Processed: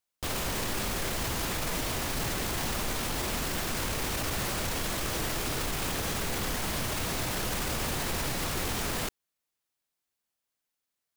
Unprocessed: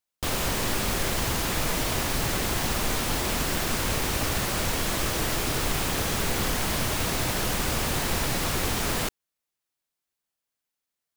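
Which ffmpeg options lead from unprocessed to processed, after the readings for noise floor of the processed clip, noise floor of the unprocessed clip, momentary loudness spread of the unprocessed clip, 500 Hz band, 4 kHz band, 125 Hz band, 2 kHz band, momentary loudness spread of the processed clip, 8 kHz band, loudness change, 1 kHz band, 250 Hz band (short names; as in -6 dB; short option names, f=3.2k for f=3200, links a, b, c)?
under -85 dBFS, under -85 dBFS, 0 LU, -5.0 dB, -4.5 dB, -5.5 dB, -4.5 dB, 0 LU, -4.5 dB, -4.5 dB, -4.5 dB, -5.0 dB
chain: -af "alimiter=limit=-22.5dB:level=0:latency=1:release=17"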